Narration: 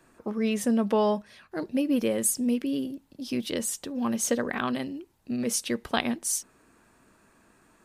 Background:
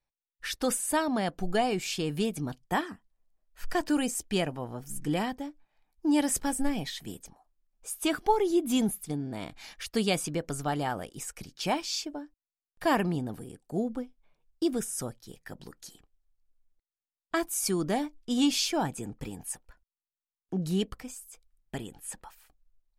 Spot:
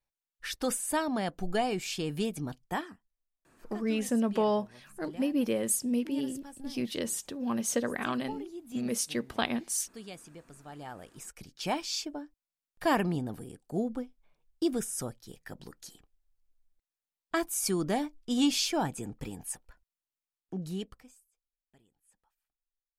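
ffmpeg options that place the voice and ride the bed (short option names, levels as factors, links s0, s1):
-filter_complex "[0:a]adelay=3450,volume=0.668[s0];[1:a]volume=5.31,afade=t=out:st=2.54:d=0.72:silence=0.16788,afade=t=in:st=10.66:d=1.33:silence=0.141254,afade=t=out:st=20.02:d=1.29:silence=0.0421697[s1];[s0][s1]amix=inputs=2:normalize=0"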